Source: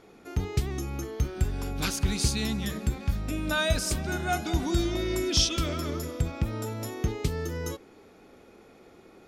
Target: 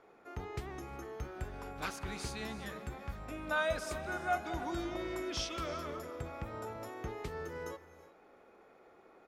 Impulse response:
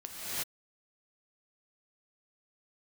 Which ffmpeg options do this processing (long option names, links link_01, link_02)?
-filter_complex "[0:a]asplit=2[link_01][link_02];[1:a]atrim=start_sample=2205[link_03];[link_02][link_03]afir=irnorm=-1:irlink=0,volume=-17.5dB[link_04];[link_01][link_04]amix=inputs=2:normalize=0,asplit=2[link_05][link_06];[link_06]asetrate=37084,aresample=44100,atempo=1.18921,volume=-15dB[link_07];[link_05][link_07]amix=inputs=2:normalize=0,acrossover=split=460 2000:gain=0.2 1 0.2[link_08][link_09][link_10];[link_08][link_09][link_10]amix=inputs=3:normalize=0,volume=-3dB"